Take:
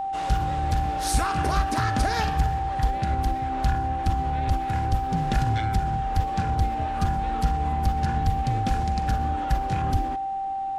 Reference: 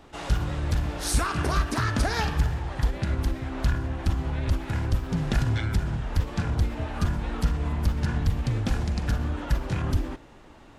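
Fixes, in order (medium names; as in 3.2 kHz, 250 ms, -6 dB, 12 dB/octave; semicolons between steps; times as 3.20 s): band-stop 780 Hz, Q 30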